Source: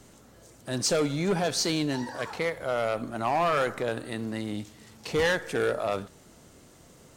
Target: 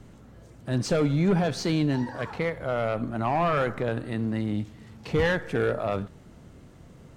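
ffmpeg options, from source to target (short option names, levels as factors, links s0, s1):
-af "bass=f=250:g=9,treble=f=4000:g=-11"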